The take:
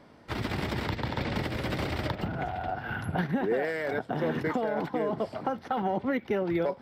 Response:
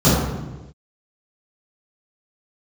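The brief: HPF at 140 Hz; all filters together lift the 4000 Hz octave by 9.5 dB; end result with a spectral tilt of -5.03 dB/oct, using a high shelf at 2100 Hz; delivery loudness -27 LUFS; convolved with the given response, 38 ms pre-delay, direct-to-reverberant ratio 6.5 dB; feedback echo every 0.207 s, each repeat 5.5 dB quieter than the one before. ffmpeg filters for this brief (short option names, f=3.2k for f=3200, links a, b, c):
-filter_complex "[0:a]highpass=140,highshelf=f=2.1k:g=8,equalizer=f=4k:t=o:g=4.5,aecho=1:1:207|414|621|828|1035|1242|1449:0.531|0.281|0.149|0.079|0.0419|0.0222|0.0118,asplit=2[a][b];[1:a]atrim=start_sample=2205,adelay=38[c];[b][c]afir=irnorm=-1:irlink=0,volume=-30.5dB[d];[a][d]amix=inputs=2:normalize=0,volume=-2.5dB"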